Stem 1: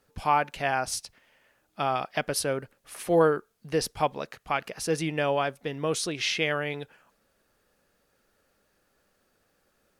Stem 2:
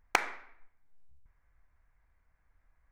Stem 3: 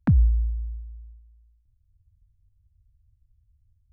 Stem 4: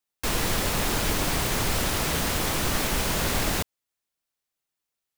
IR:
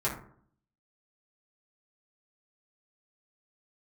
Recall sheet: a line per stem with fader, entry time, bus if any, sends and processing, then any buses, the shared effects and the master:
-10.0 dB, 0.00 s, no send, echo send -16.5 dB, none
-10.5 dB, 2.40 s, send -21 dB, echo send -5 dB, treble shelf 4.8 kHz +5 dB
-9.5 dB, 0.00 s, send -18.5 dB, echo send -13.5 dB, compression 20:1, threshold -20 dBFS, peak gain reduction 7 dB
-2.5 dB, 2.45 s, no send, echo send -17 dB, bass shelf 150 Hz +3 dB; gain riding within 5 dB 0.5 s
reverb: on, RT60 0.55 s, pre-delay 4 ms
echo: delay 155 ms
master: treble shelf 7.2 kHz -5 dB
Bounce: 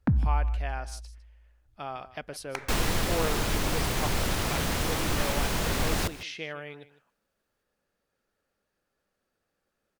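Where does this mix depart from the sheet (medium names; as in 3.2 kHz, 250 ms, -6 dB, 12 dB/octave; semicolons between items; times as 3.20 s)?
stem 3 -9.5 dB -> -0.5 dB; reverb return -6.0 dB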